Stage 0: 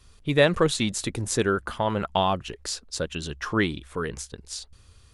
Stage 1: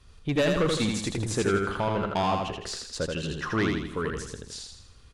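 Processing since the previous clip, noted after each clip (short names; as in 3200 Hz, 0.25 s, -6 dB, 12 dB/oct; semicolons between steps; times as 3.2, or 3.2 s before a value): LPF 3800 Hz 6 dB/oct; soft clip -19.5 dBFS, distortion -10 dB; feedback echo 81 ms, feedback 47%, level -3.5 dB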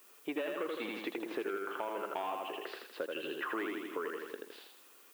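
elliptic band-pass 320–2900 Hz, stop band 50 dB; compressor 5:1, threshold -35 dBFS, peak gain reduction 12.5 dB; added noise blue -61 dBFS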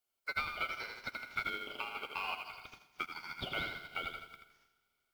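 ring modulator 1800 Hz; Schroeder reverb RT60 3.5 s, combs from 28 ms, DRR 6.5 dB; upward expander 2.5:1, over -55 dBFS; gain +5 dB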